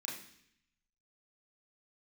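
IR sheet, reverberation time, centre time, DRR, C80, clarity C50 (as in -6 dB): 0.65 s, 40 ms, -5.5 dB, 9.0 dB, 6.0 dB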